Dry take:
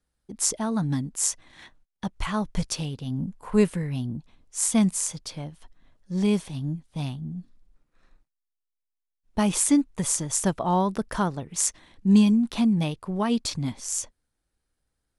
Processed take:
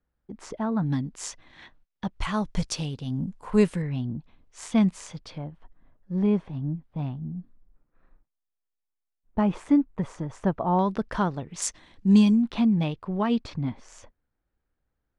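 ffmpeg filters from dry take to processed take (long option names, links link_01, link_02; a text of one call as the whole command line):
ffmpeg -i in.wav -af "asetnsamples=nb_out_samples=441:pad=0,asendcmd='0.86 lowpass f 4000;2.21 lowpass f 7700;3.82 lowpass f 3100;5.38 lowpass f 1500;10.79 lowpass f 3900;11.62 lowpass f 6900;12.42 lowpass f 3300;13.45 lowpass f 2000',lowpass=1900" out.wav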